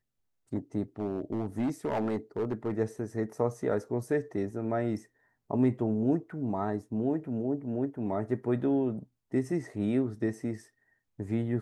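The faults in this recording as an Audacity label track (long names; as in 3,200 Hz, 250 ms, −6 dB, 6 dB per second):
0.990000	2.740000	clipping −25.5 dBFS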